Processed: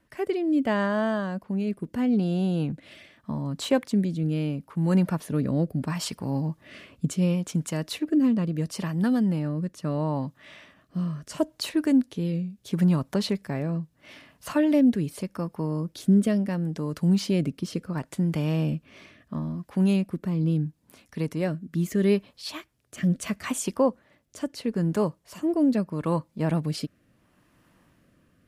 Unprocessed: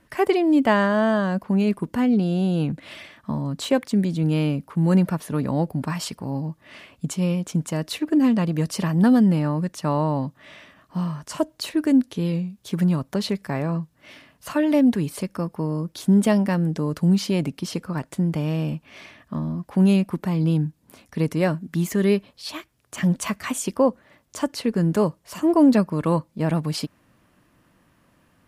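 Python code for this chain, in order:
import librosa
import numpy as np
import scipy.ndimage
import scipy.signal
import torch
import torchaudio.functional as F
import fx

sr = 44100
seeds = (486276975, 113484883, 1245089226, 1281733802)

y = fx.rider(x, sr, range_db=10, speed_s=2.0)
y = fx.rotary(y, sr, hz=0.75)
y = F.gain(torch.from_numpy(y), -3.0).numpy()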